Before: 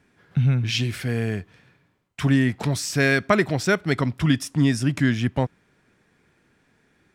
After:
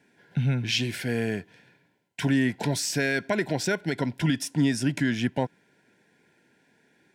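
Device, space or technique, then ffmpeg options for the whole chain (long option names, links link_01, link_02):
PA system with an anti-feedback notch: -af "highpass=170,asuperstop=centerf=1200:order=20:qfactor=3.9,alimiter=limit=-14.5dB:level=0:latency=1:release=121"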